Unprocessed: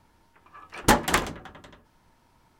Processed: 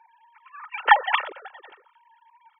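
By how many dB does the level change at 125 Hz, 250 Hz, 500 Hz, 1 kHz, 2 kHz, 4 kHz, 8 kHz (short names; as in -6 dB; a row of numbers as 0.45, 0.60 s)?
under -40 dB, under -25 dB, -5.5 dB, +6.0 dB, +5.0 dB, 0.0 dB, under -40 dB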